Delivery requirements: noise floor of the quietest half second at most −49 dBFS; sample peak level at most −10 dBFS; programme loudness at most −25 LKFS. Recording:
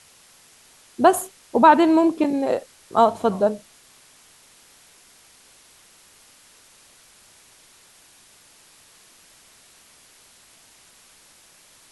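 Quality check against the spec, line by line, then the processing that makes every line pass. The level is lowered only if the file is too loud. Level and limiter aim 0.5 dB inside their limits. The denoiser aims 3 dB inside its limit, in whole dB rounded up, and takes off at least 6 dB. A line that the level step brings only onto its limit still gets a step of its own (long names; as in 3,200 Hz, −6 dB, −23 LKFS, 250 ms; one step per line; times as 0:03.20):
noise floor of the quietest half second −53 dBFS: in spec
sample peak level −1.5 dBFS: out of spec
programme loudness −19.0 LKFS: out of spec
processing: level −6.5 dB
brickwall limiter −10.5 dBFS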